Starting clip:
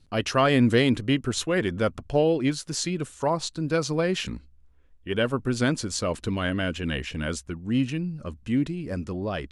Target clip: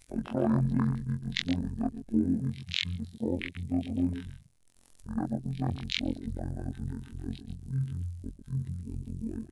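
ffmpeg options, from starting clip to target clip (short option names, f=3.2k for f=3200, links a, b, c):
-filter_complex "[0:a]superequalizer=7b=2:11b=0.631:12b=0.398:16b=0.447,acrusher=bits=8:mix=0:aa=0.000001,afftfilt=real='hypot(re,im)*cos(PI*b)':imag='0':win_size=2048:overlap=0.75,asplit=2[a][b];[b]aecho=0:1:135:0.282[c];[a][c]amix=inputs=2:normalize=0,crystalizer=i=1.5:c=0,bandreject=f=50:t=h:w=6,bandreject=f=100:t=h:w=6,bandreject=f=150:t=h:w=6,bandreject=f=200:t=h:w=6,bandreject=f=250:t=h:w=6,bandreject=f=300:t=h:w=6,bandreject=f=350:t=h:w=6,asetrate=22696,aresample=44100,atempo=1.94306,highshelf=f=5.8k:g=9.5,afwtdn=0.0355,acompressor=mode=upward:threshold=-38dB:ratio=2.5,volume=-4.5dB"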